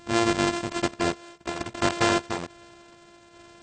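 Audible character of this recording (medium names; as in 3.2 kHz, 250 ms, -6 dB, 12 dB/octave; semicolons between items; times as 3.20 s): a buzz of ramps at a fixed pitch in blocks of 128 samples; tremolo saw down 1.2 Hz, depth 45%; AAC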